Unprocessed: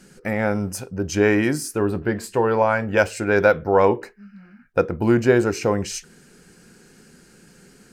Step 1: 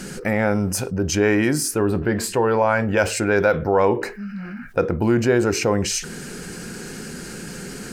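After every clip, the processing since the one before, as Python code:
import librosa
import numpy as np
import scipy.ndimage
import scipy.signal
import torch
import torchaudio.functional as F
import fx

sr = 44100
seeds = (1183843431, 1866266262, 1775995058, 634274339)

y = fx.env_flatten(x, sr, amount_pct=50)
y = y * 10.0 ** (-3.0 / 20.0)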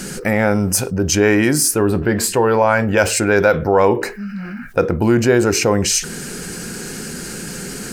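y = fx.high_shelf(x, sr, hz=5900.0, db=6.5)
y = y * 10.0 ** (4.0 / 20.0)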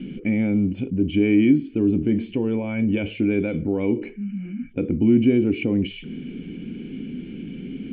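y = fx.formant_cascade(x, sr, vowel='i')
y = y * 10.0 ** (5.0 / 20.0)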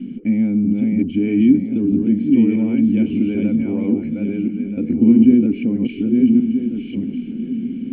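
y = fx.reverse_delay_fb(x, sr, ms=640, feedback_pct=41, wet_db=-2.0)
y = fx.peak_eq(y, sr, hz=240.0, db=15.0, octaves=0.68)
y = fx.end_taper(y, sr, db_per_s=550.0)
y = y * 10.0 ** (-7.0 / 20.0)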